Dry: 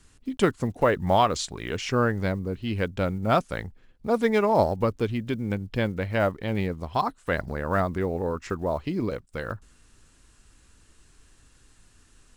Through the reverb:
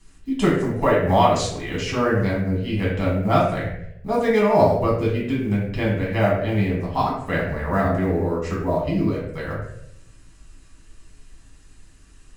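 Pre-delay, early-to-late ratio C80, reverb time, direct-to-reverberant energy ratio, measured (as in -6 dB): 5 ms, 6.0 dB, 0.70 s, -6.5 dB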